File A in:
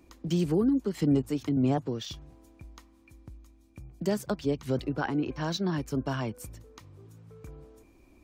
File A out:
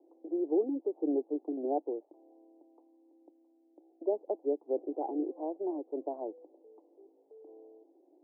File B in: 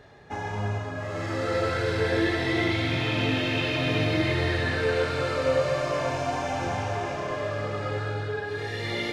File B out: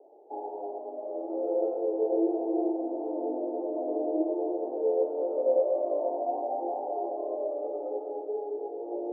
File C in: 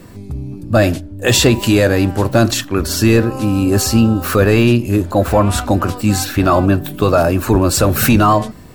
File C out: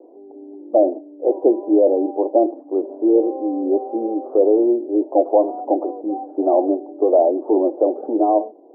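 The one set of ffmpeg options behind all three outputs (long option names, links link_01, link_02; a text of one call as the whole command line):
ffmpeg -i in.wav -af "asuperpass=centerf=500:order=12:qfactor=0.95" out.wav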